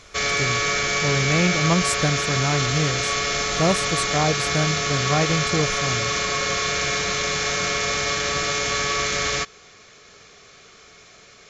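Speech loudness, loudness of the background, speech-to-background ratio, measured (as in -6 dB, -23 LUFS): -24.5 LUFS, -22.0 LUFS, -2.5 dB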